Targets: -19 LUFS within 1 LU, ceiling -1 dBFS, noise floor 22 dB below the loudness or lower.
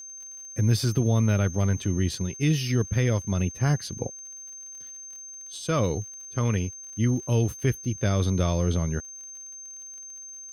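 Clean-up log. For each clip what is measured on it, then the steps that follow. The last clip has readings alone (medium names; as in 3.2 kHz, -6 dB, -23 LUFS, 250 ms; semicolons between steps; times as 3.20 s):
tick rate 51 per s; steady tone 6.3 kHz; tone level -39 dBFS; loudness -26.0 LUFS; peak level -11.5 dBFS; loudness target -19.0 LUFS
-> de-click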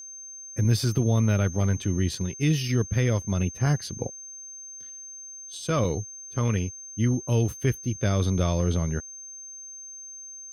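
tick rate 0.095 per s; steady tone 6.3 kHz; tone level -39 dBFS
-> band-stop 6.3 kHz, Q 30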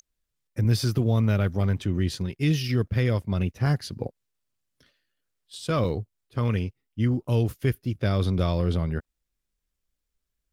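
steady tone not found; loudness -26.0 LUFS; peak level -12.0 dBFS; loudness target -19.0 LUFS
-> trim +7 dB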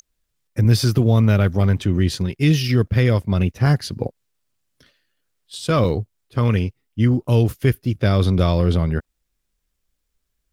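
loudness -19.0 LUFS; peak level -5.0 dBFS; noise floor -75 dBFS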